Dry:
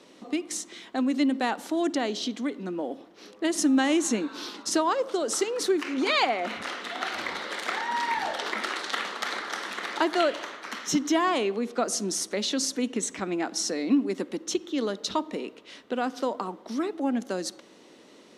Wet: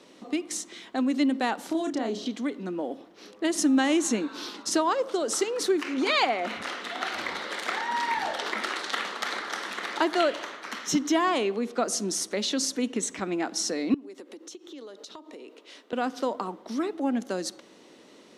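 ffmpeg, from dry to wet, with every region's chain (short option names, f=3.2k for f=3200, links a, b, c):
-filter_complex "[0:a]asettb=1/sr,asplit=3[a][b][c];[a]atrim=end=1.674[d];[b]atrim=start=1.67:end=2.26,asetpts=PTS-STARTPTS,afade=t=in:d=0.004:c=qsin,afade=t=out:st=0.586:d=0.004:c=qsin,equalizer=f=95:t=o:w=1.9:g=7.5,acrossover=split=1600|4800[e][f][g];[e]acompressor=threshold=-26dB:ratio=4[h];[f]acompressor=threshold=-49dB:ratio=4[i];[g]acompressor=threshold=-49dB:ratio=4[j];[h][i][j]amix=inputs=3:normalize=0,asplit=2[k][l];[l]adelay=31,volume=-5dB[m];[k][m]amix=inputs=2:normalize=0,atrim=end_sample=26019[n];[c]atrim=start=2.256[o];[d][n]acrossfade=d=0.004:c1=hsin:c2=qsin[p];[p][o]acrossfade=d=0.004:c1=qsin:c2=hsin,asettb=1/sr,asplit=3[q][r][s];[q]atrim=end=13.944[t];[r]atrim=start=13.94:end=15.93,asetpts=PTS-STARTPTS,afade=t=in:d=0.004:c=qsin,afade=t=out:st=1.986:d=0.004:c=qsin,highpass=f=280:w=0.5412,highpass=f=280:w=1.3066,acompressor=threshold=-40dB:ratio=6:attack=3.2:release=140:knee=1:detection=peak,equalizer=f=1.8k:t=o:w=2:g=-3[u];[s]atrim=start=15.926[v];[t][u]acrossfade=d=0.004:c1=hsin:c2=qsin[w];[w][v]acrossfade=d=0.004:c1=qsin:c2=hsin"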